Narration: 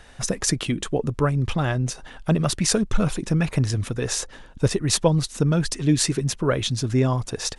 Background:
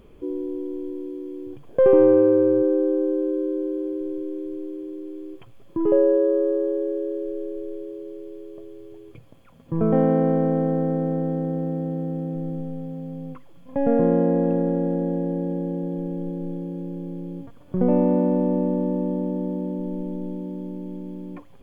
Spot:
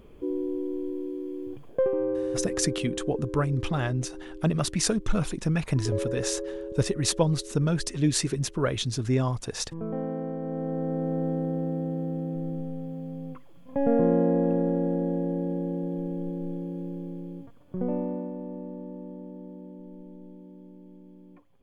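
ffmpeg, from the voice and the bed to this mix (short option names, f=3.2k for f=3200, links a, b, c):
-filter_complex "[0:a]adelay=2150,volume=-4.5dB[a];[1:a]volume=9dB,afade=t=out:st=1.64:d=0.26:silence=0.251189,afade=t=in:st=10.4:d=0.86:silence=0.316228,afade=t=out:st=16.87:d=1.46:silence=0.237137[b];[a][b]amix=inputs=2:normalize=0"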